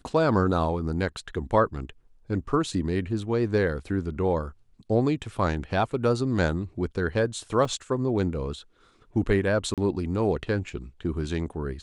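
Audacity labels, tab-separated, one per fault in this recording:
7.650000	7.650000	drop-out 3.6 ms
9.740000	9.780000	drop-out 37 ms

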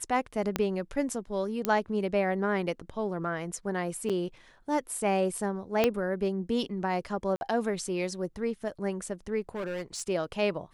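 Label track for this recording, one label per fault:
0.560000	0.560000	click −12 dBFS
1.650000	1.650000	click −11 dBFS
4.090000	4.100000	drop-out 7 ms
5.840000	5.840000	click −10 dBFS
7.360000	7.410000	drop-out 51 ms
9.410000	10.020000	clipping −30.5 dBFS

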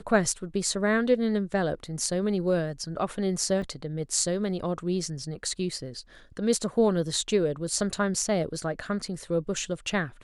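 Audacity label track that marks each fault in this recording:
3.620000	3.620000	drop-out 3.2 ms

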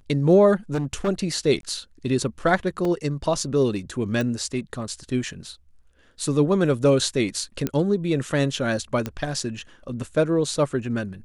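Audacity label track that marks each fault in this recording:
0.730000	1.090000	clipping −20 dBFS
1.610000	1.630000	drop-out 22 ms
2.850000	2.850000	drop-out 2.6 ms
4.210000	4.210000	click
7.670000	7.670000	click −11 dBFS
9.060000	9.060000	click −14 dBFS

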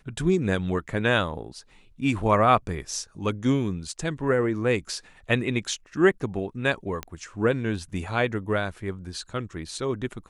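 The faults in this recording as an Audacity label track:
7.030000	7.030000	click −16 dBFS

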